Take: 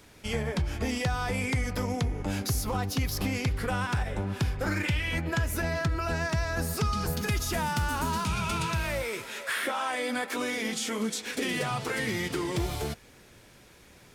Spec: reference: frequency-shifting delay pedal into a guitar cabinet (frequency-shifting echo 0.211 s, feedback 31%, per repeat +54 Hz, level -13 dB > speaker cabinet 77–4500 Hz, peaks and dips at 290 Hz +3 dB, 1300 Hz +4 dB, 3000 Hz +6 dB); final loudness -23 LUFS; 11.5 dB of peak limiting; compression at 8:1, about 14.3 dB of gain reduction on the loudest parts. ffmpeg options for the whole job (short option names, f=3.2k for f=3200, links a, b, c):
-filter_complex "[0:a]acompressor=threshold=-39dB:ratio=8,alimiter=level_in=15dB:limit=-24dB:level=0:latency=1,volume=-15dB,asplit=4[a][b][c][d];[b]adelay=211,afreqshift=54,volume=-13dB[e];[c]adelay=422,afreqshift=108,volume=-23.2dB[f];[d]adelay=633,afreqshift=162,volume=-33.3dB[g];[a][e][f][g]amix=inputs=4:normalize=0,highpass=77,equalizer=f=290:t=q:w=4:g=3,equalizer=f=1.3k:t=q:w=4:g=4,equalizer=f=3k:t=q:w=4:g=6,lowpass=f=4.5k:w=0.5412,lowpass=f=4.5k:w=1.3066,volume=24dB"